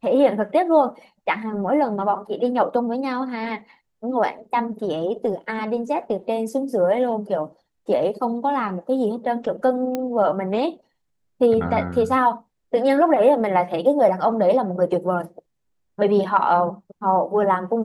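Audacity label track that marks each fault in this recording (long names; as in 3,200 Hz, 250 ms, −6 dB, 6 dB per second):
9.950000	9.950000	click −12 dBFS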